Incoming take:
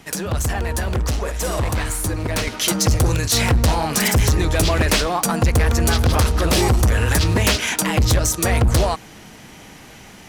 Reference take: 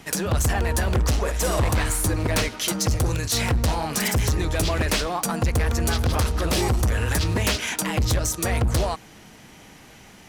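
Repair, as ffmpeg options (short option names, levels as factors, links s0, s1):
-filter_complex "[0:a]asplit=3[s0][s1][s2];[s0]afade=t=out:st=4.16:d=0.02[s3];[s1]highpass=f=140:w=0.5412,highpass=f=140:w=1.3066,afade=t=in:st=4.16:d=0.02,afade=t=out:st=4.28:d=0.02[s4];[s2]afade=t=in:st=4.28:d=0.02[s5];[s3][s4][s5]amix=inputs=3:normalize=0,asplit=3[s6][s7][s8];[s6]afade=t=out:st=8.66:d=0.02[s9];[s7]highpass=f=140:w=0.5412,highpass=f=140:w=1.3066,afade=t=in:st=8.66:d=0.02,afade=t=out:st=8.78:d=0.02[s10];[s8]afade=t=in:st=8.78:d=0.02[s11];[s9][s10][s11]amix=inputs=3:normalize=0,asetnsamples=n=441:p=0,asendcmd='2.47 volume volume -5.5dB',volume=1"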